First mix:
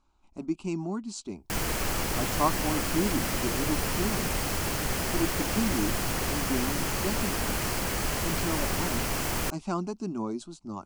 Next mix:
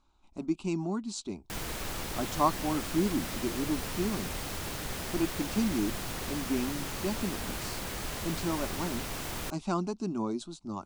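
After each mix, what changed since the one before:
background −7.5 dB
master: add parametric band 3,700 Hz +6.5 dB 0.28 octaves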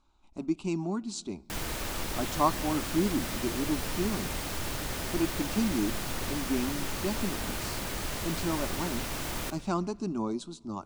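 reverb: on, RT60 1.7 s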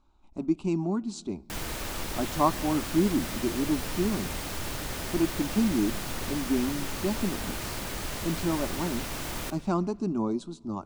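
speech: add tilt shelving filter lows +4 dB, about 1,300 Hz

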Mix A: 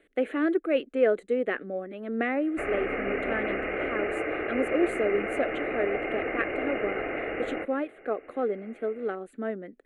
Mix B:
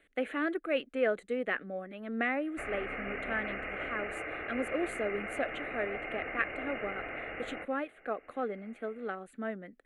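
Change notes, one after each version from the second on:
background −4.5 dB
master: add parametric band 380 Hz −10 dB 1.3 octaves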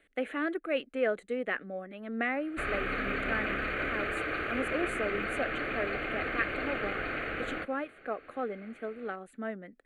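background: remove Chebyshev low-pass with heavy ripple 2,900 Hz, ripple 9 dB

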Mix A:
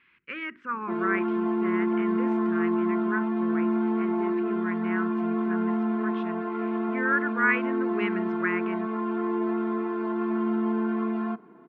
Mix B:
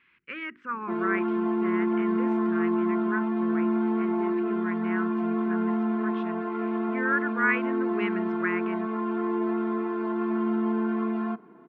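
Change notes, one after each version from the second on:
speech: send −7.5 dB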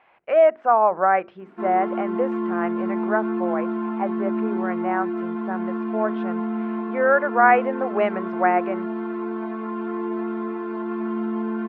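speech: remove Butterworth band-reject 680 Hz, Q 0.52
background: entry +0.70 s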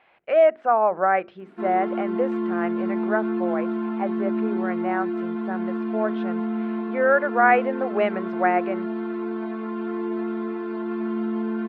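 master: add graphic EQ with 15 bands 1,000 Hz −5 dB, 4,000 Hz +5 dB, 10,000 Hz +8 dB

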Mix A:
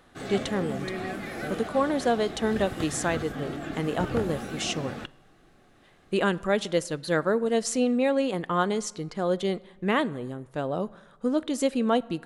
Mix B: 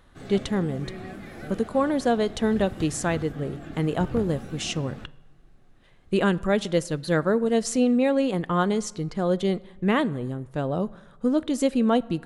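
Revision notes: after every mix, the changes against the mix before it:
background −8.0 dB
master: add low-shelf EQ 190 Hz +11 dB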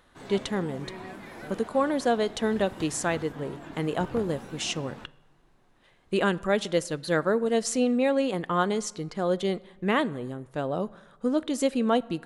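background: remove Butterworth band-reject 960 Hz, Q 4.3
master: add low-shelf EQ 190 Hz −11 dB

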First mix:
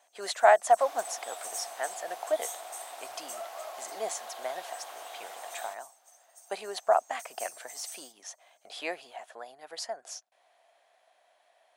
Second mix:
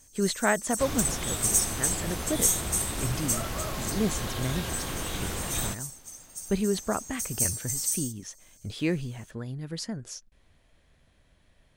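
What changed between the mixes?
speech −10.5 dB
first sound +3.5 dB
master: remove four-pole ladder high-pass 660 Hz, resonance 75%

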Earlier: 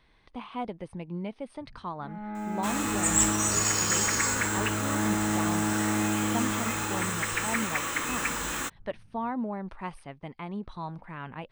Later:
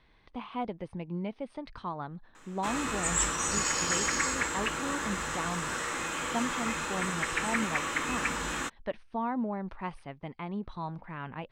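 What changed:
first sound: muted
master: add high-frequency loss of the air 56 metres

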